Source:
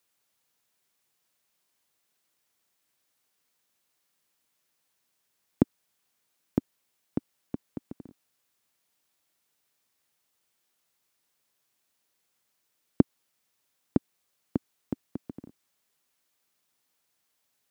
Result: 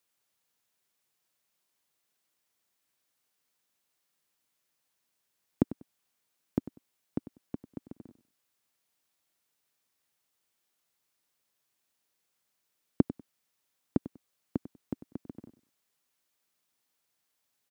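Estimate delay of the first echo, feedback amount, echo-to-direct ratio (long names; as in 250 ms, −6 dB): 97 ms, 21%, −15.0 dB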